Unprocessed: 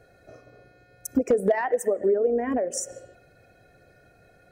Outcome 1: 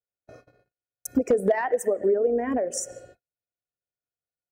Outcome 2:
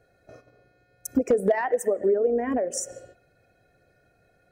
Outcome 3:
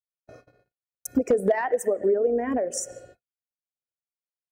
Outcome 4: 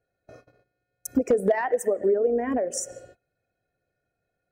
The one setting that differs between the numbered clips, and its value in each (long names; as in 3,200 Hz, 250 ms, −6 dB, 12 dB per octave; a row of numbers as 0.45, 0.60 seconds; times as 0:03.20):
noise gate, range: −46, −7, −60, −23 decibels